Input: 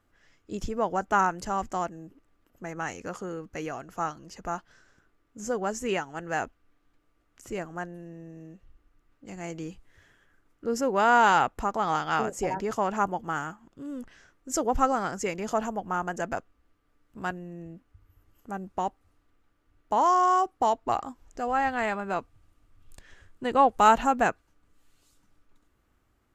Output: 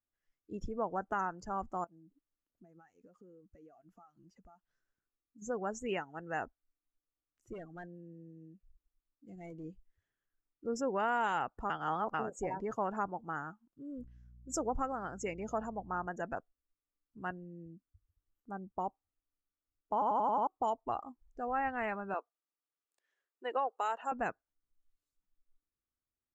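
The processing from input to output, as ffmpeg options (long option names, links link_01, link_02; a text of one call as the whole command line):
ffmpeg -i in.wav -filter_complex "[0:a]asettb=1/sr,asplit=3[link_01][link_02][link_03];[link_01]atrim=end=1.844[link_04];[link_02]atrim=start=1.84:end=5.42,asetpts=PTS-STARTPTS,afade=type=in:duration=0.004:curve=qsin,afade=type=out:start_time=3.576:duration=0.004:curve=qsin,acompressor=threshold=-44dB:ratio=8:attack=3.2:release=140:knee=1:detection=peak[link_05];[link_03]atrim=start=5.416[link_06];[link_04][link_05]acrossfade=duration=0.004:curve1=hsin:curve2=qsin[link_07];[link_07][link_06]acrossfade=duration=0.004:curve1=qsin:curve2=hsin,asplit=3[link_08][link_09][link_10];[link_08]afade=type=out:start_time=7.52:duration=0.02[link_11];[link_09]asoftclip=type=hard:threshold=-34dB,afade=type=in:start_time=7.52:duration=0.02,afade=type=out:start_time=9.63:duration=0.02[link_12];[link_10]afade=type=in:start_time=9.63:duration=0.02[link_13];[link_11][link_12][link_13]amix=inputs=3:normalize=0,asettb=1/sr,asplit=3[link_14][link_15][link_16];[link_14]atrim=end=13.984[link_17];[link_15]atrim=start=13.98:end=16.07,asetpts=PTS-STARTPTS,afade=type=in:duration=0.004:curve=qsin,afade=type=out:start_time=2.086:duration=0.004:curve=qsin,aeval=exprs='val(0)+0.00501*(sin(2*PI*60*n/s)+sin(2*PI*2*60*n/s)/2+sin(2*PI*3*60*n/s)/3+sin(2*PI*4*60*n/s)/4+sin(2*PI*5*60*n/s)/5)':channel_layout=same[link_18];[link_16]atrim=start=16.066[link_19];[link_17][link_18]acrossfade=duration=0.004:curve1=hsin:curve2=qsin[link_20];[link_20][link_19]acrossfade=duration=0.004:curve1=qsin:curve2=hsin,asettb=1/sr,asplit=3[link_21][link_22][link_23];[link_21]atrim=end=22.144[link_24];[link_22]atrim=start=22.14:end=24.12,asetpts=PTS-STARTPTS,afade=type=in:duration=0.004:curve=qsin,afade=type=out:start_time=1.976:duration=0.004:curve=qsin,highpass=frequency=370:width=0.5412,highpass=frequency=370:width=1.3066[link_25];[link_23]atrim=start=24.116[link_26];[link_24][link_25]acrossfade=duration=0.004:curve1=hsin:curve2=qsin[link_27];[link_27][link_26]acrossfade=duration=0.004:curve1=qsin:curve2=hsin,asplit=9[link_28][link_29][link_30][link_31][link_32][link_33][link_34][link_35][link_36];[link_28]atrim=end=11.702[link_37];[link_29]atrim=start=11.698:end=12.142,asetpts=PTS-STARTPTS,areverse[link_38];[link_30]atrim=start=12.138:end=20.022[link_39];[link_31]atrim=start=19.928:end=20.022[link_40];[link_32]atrim=start=19.928:end=20.022[link_41];[link_33]atrim=start=19.928:end=20.022[link_42];[link_34]atrim=start=19.928:end=20.022[link_43];[link_35]atrim=start=19.928:end=20.022[link_44];[link_36]atrim=start=20.468[link_45];[link_37][link_38]acrossfade=duration=0.004:curve1=hsin:curve2=hsin[link_46];[link_46][link_39]acrossfade=duration=0.004:curve1=hsin:curve2=hsin[link_47];[link_47][link_40]acrossfade=duration=0.004:curve1=hsin:curve2=hsin[link_48];[link_48][link_41]acrossfade=duration=0.004:curve1=hsin:curve2=hsin[link_49];[link_49][link_42]acrossfade=duration=0.004:curve1=hsin:curve2=hsin[link_50];[link_50][link_43]acrossfade=duration=0.004:curve1=hsin:curve2=hsin[link_51];[link_51][link_44]acrossfade=duration=0.004:curve1=hsin:curve2=hsin[link_52];[link_52][link_45]acrossfade=duration=0.004:curve1=hsin:curve2=hsin,afftdn=noise_reduction=21:noise_floor=-38,alimiter=limit=-16dB:level=0:latency=1:release=466,volume=-7.5dB" out.wav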